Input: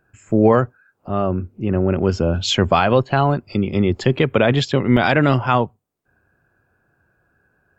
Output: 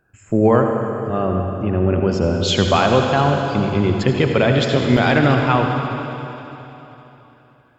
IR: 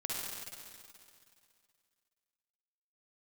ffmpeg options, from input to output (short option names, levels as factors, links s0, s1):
-filter_complex "[0:a]asplit=2[s0][s1];[1:a]atrim=start_sample=2205,asetrate=30870,aresample=44100[s2];[s1][s2]afir=irnorm=-1:irlink=0,volume=0.631[s3];[s0][s3]amix=inputs=2:normalize=0,volume=0.596"